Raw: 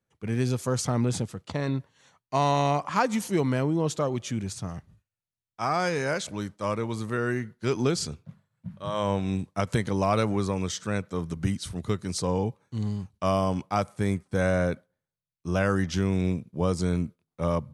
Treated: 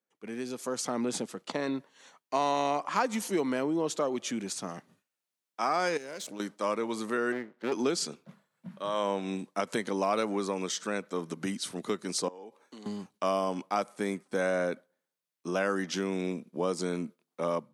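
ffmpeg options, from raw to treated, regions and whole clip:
ffmpeg -i in.wav -filter_complex "[0:a]asettb=1/sr,asplit=3[link_01][link_02][link_03];[link_01]atrim=end=5.974[link_04];[link_02]atrim=start=5.97:end=6.4,asetpts=PTS-STARTPTS,afade=type=in:duration=0.004:curve=qsin,afade=type=out:start_time=0.426:duration=0.004:curve=qsin,aeval=exprs='if(lt(val(0),0),0.447*val(0),val(0))':channel_layout=same,equalizer=frequency=1300:width=0.51:gain=-7.5,acompressor=threshold=-38dB:ratio=4:attack=3.2:release=140:knee=1:detection=peak[link_05];[link_03]atrim=start=6.396[link_06];[link_04][link_05]acrossfade=duration=0.004:curve1=hsin:curve2=qsin[link_07];[link_07][link_06]acrossfade=duration=0.004:curve1=qsin:curve2=hsin,asettb=1/sr,asplit=3[link_08][link_09][link_10];[link_08]atrim=end=7.324[link_11];[link_09]atrim=start=7.32:end=7.72,asetpts=PTS-STARTPTS,afade=type=in:duration=0.004:curve=qsin,afade=type=out:start_time=0.396:duration=0.004:curve=qsin,lowpass=2400,acompressor=mode=upward:threshold=-45dB:ratio=2.5:attack=3.2:release=140:knee=2.83:detection=peak,aeval=exprs='max(val(0),0)':channel_layout=same[link_12];[link_10]atrim=start=7.716[link_13];[link_11][link_12]acrossfade=duration=0.004:curve1=hsin:curve2=qsin[link_14];[link_14][link_13]acrossfade=duration=0.004:curve1=qsin:curve2=hsin,asettb=1/sr,asplit=3[link_15][link_16][link_17];[link_15]atrim=end=12.284[link_18];[link_16]atrim=start=12.28:end=12.86,asetpts=PTS-STARTPTS,afade=type=in:duration=0.004:curve=qsin,afade=type=out:start_time=0.576:duration=0.004:curve=qsin,highpass=310,acompressor=threshold=-45dB:ratio=6:attack=3.2:release=140:knee=1:detection=peak[link_19];[link_17]atrim=start=12.856[link_20];[link_18][link_19]acrossfade=duration=0.004:curve1=hsin:curve2=qsin[link_21];[link_21][link_20]acrossfade=duration=0.004:curve1=qsin:curve2=hsin,dynaudnorm=framelen=550:gausssize=3:maxgain=11.5dB,highpass=frequency=230:width=0.5412,highpass=frequency=230:width=1.3066,acompressor=threshold=-31dB:ratio=1.5,volume=-5.5dB" out.wav

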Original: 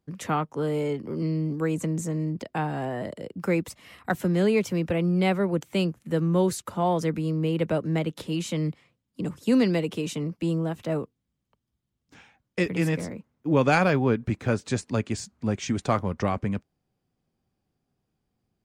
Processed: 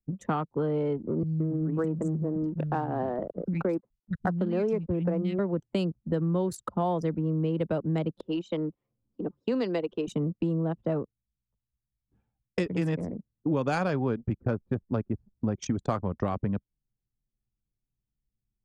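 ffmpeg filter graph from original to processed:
ffmpeg -i in.wav -filter_complex "[0:a]asettb=1/sr,asplit=3[link_01][link_02][link_03];[link_01]atrim=end=1.234[link_04];[link_02]atrim=start=1.23:end=5.39,asetpts=PTS-STARTPTS,afade=type=in:duration=0.004:curve=qsin,afade=type=out:start_time=4.156:duration=0.004:curve=qsin,highshelf=frequency=4100:gain=-7.5,aeval=exprs='val(0)*gte(abs(val(0)),0.00794)':channel_layout=same,acrossover=split=190|2200[link_05][link_06][link_07];[link_07]adelay=30[link_08];[link_06]adelay=170[link_09];[link_05][link_09][link_08]amix=inputs=3:normalize=0,atrim=end_sample=183456[link_10];[link_03]atrim=start=5.386[link_11];[link_04][link_10]acrossfade=duration=0.004:curve1=hsin:curve2=qsin[link_12];[link_12][link_11]acrossfade=duration=0.004:curve1=qsin:curve2=hsin,asettb=1/sr,asplit=3[link_13][link_14][link_15];[link_13]atrim=end=8.214[link_16];[link_14]atrim=start=8.21:end=10.08,asetpts=PTS-STARTPTS,afade=type=in:duration=0.004:curve=qsin,afade=type=out:start_time=1.866:duration=0.004:curve=qsin,acrossover=split=300 6900:gain=0.178 1 0.2[link_17][link_18][link_19];[link_17][link_18][link_19]amix=inputs=3:normalize=0,acompressor=mode=upward:threshold=-44dB:ratio=2.5:attack=3.2:release=140:knee=2.83:detection=peak[link_20];[link_15]atrim=start=10.076[link_21];[link_16][link_20]acrossfade=duration=0.004:curve1=hsin:curve2=qsin[link_22];[link_22][link_21]acrossfade=duration=0.004:curve1=qsin:curve2=hsin,asettb=1/sr,asplit=3[link_23][link_24][link_25];[link_23]atrim=end=14.394[link_26];[link_24]atrim=start=14.39:end=15.34,asetpts=PTS-STARTPTS,afade=type=in:duration=0.004:curve=qsin,afade=type=out:start_time=0.946:duration=0.004:curve=qsin,acrusher=bits=9:dc=4:mix=0:aa=0.000001,adynamicsmooth=sensitivity=1:basefreq=1600[link_27];[link_25]atrim=start=15.336[link_28];[link_26][link_27]acrossfade=duration=0.004:curve1=hsin:curve2=qsin[link_29];[link_29][link_28]acrossfade=duration=0.004:curve1=qsin:curve2=hsin,anlmdn=25.1,equalizer=frequency=2200:width=2:gain=-7,acompressor=threshold=-32dB:ratio=4,volume=6dB" out.wav

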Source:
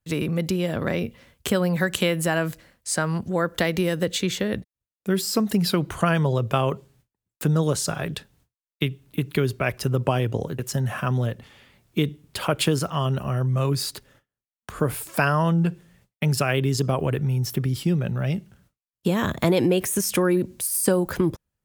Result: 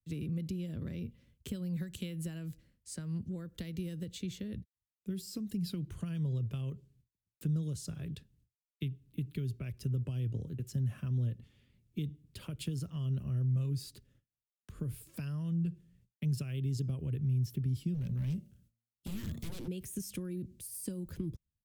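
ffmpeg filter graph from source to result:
ffmpeg -i in.wav -filter_complex "[0:a]asettb=1/sr,asplit=3[link_01][link_02][link_03];[link_01]atrim=end=17.944[link_04];[link_02]atrim=start=17.94:end=19.68,asetpts=PTS-STARTPTS,afade=type=in:duration=0.004:curve=qsin,afade=type=out:start_time=1.736:duration=0.004:curve=qsin,highshelf=frequency=4100:gain=9.5,bandreject=frequency=114.8:width_type=h:width=4,bandreject=frequency=229.6:width_type=h:width=4,bandreject=frequency=344.4:width_type=h:width=4,bandreject=frequency=459.2:width_type=h:width=4,bandreject=frequency=574:width_type=h:width=4,bandreject=frequency=688.8:width_type=h:width=4,bandreject=frequency=803.6:width_type=h:width=4,bandreject=frequency=918.4:width_type=h:width=4,bandreject=frequency=1033.2:width_type=h:width=4,bandreject=frequency=1148:width_type=h:width=4,bandreject=frequency=1262.8:width_type=h:width=4,aeval=exprs='0.0891*(abs(mod(val(0)/0.0891+3,4)-2)-1)':channel_layout=same[link_05];[link_03]atrim=start=19.676[link_06];[link_04][link_05]acrossfade=duration=0.004:curve1=hsin:curve2=qsin[link_07];[link_07][link_06]acrossfade=duration=0.004:curve1=qsin:curve2=hsin,lowshelf=frequency=410:gain=-6,acrossover=split=130|3000[link_08][link_09][link_10];[link_09]acompressor=threshold=-29dB:ratio=6[link_11];[link_08][link_11][link_10]amix=inputs=3:normalize=0,firequalizer=gain_entry='entry(100,0);entry(740,-28);entry(2700,-19)':delay=0.05:min_phase=1" out.wav

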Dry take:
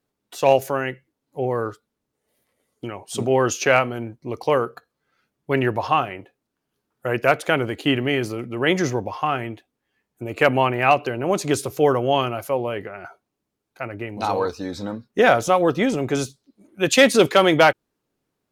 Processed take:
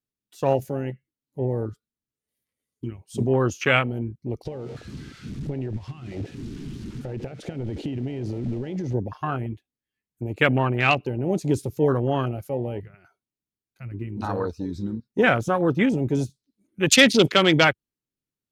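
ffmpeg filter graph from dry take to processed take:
ffmpeg -i in.wav -filter_complex "[0:a]asettb=1/sr,asplit=3[link_01][link_02][link_03];[link_01]atrim=end=4.454[link_04];[link_02]atrim=start=4.45:end=8.94,asetpts=PTS-STARTPTS,afade=type=in:duration=0.004:curve=qsin,afade=type=out:start_time=4.486:duration=0.004:curve=qsin,aeval=exprs='val(0)+0.5*0.0501*sgn(val(0))':channel_layout=same,lowpass=5500,acompressor=threshold=-25dB:ratio=8:attack=3.2:release=140:knee=1:detection=peak[link_05];[link_03]atrim=start=8.936[link_06];[link_04][link_05]acrossfade=duration=0.004:curve1=hsin:curve2=qsin[link_07];[link_07][link_06]acrossfade=duration=0.004:curve1=qsin:curve2=hsin,equalizer=frequency=730:width=0.58:gain=-13,afwtdn=0.0316,volume=5.5dB" out.wav

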